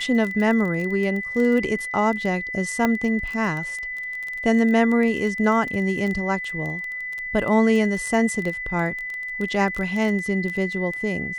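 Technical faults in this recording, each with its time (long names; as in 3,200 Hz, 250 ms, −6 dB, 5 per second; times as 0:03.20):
surface crackle 16 per second −26 dBFS
whistle 2,000 Hz −28 dBFS
0:02.85: click −8 dBFS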